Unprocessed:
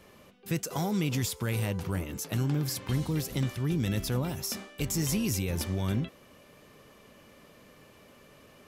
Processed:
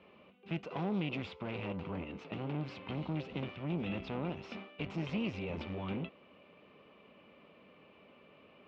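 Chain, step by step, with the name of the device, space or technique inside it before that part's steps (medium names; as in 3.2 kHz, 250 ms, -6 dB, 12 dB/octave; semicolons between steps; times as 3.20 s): guitar amplifier (valve stage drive 30 dB, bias 0.75; tone controls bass -3 dB, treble -9 dB; cabinet simulation 87–3500 Hz, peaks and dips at 120 Hz -9 dB, 190 Hz +3 dB, 1.7 kHz -8 dB, 2.6 kHz +6 dB); trim +1 dB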